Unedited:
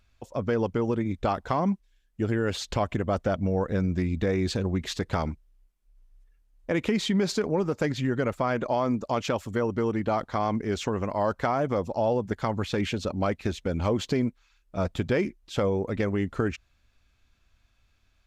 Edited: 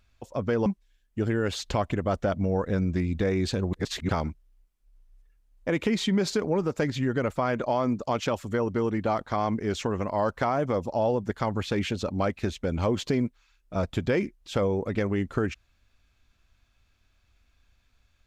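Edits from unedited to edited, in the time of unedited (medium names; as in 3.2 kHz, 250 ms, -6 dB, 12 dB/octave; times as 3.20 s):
0.66–1.68 s: delete
4.75–5.11 s: reverse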